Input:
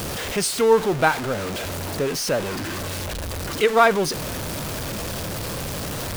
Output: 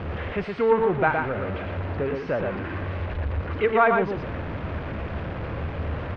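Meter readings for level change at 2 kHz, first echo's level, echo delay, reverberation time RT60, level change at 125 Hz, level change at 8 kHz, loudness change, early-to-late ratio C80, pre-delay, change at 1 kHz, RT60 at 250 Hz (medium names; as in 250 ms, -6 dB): -3.0 dB, -4.5 dB, 117 ms, no reverb, +1.5 dB, under -35 dB, -3.0 dB, no reverb, no reverb, -2.5 dB, no reverb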